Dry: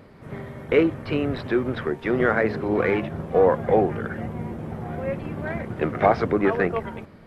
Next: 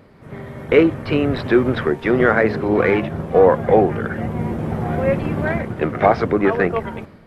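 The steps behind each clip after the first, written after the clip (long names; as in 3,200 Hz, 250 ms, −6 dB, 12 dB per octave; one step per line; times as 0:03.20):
automatic gain control gain up to 10 dB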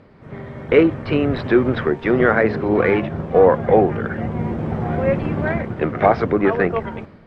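high-frequency loss of the air 95 metres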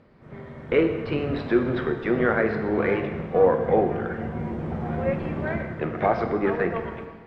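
dense smooth reverb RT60 1.5 s, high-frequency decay 0.95×, DRR 5.5 dB
level −7.5 dB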